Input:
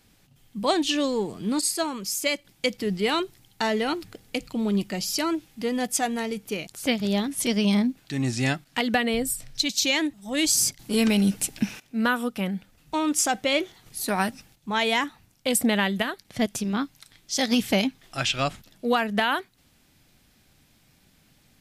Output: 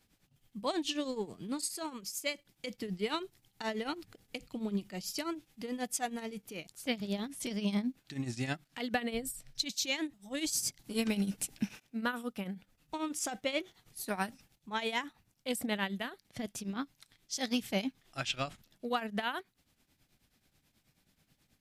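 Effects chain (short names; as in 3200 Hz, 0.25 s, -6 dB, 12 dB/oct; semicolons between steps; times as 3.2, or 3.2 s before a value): tremolo triangle 9.3 Hz, depth 80%; gain -7.5 dB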